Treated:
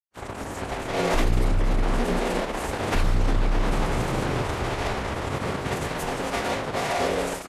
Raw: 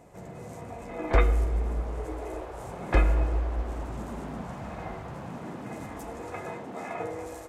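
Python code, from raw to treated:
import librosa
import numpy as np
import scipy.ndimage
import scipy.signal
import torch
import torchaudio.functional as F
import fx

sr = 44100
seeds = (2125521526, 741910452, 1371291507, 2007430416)

y = fx.fuzz(x, sr, gain_db=40.0, gate_db=-39.0)
y = fx.pitch_keep_formants(y, sr, semitones=-10.0)
y = F.gain(torch.from_numpy(y), -5.0).numpy()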